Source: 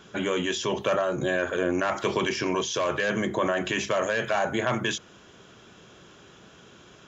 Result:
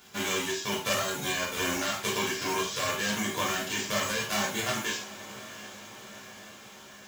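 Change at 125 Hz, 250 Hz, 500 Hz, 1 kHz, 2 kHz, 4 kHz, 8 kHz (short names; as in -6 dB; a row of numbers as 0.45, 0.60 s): -5.0 dB, -5.5 dB, -8.0 dB, -3.0 dB, -2.0 dB, +2.0 dB, n/a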